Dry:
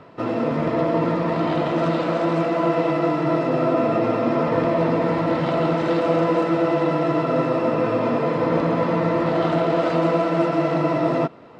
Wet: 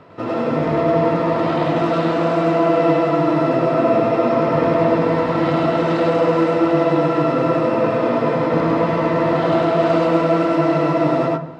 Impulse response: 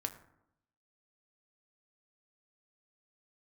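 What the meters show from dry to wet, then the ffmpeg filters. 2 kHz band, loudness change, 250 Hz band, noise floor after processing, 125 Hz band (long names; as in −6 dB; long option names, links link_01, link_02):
+3.5 dB, +3.5 dB, +3.0 dB, −22 dBFS, +2.5 dB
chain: -filter_complex "[0:a]asplit=2[link_01][link_02];[1:a]atrim=start_sample=2205,adelay=101[link_03];[link_02][link_03]afir=irnorm=-1:irlink=0,volume=1dB[link_04];[link_01][link_04]amix=inputs=2:normalize=0"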